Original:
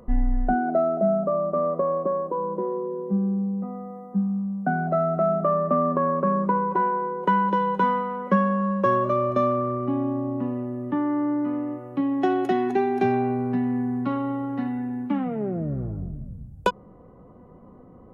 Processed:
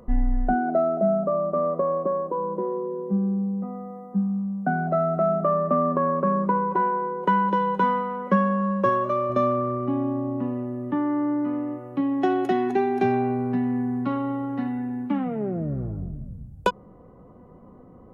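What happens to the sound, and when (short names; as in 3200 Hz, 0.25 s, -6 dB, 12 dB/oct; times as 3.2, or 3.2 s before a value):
8.89–9.3 low shelf 320 Hz -7 dB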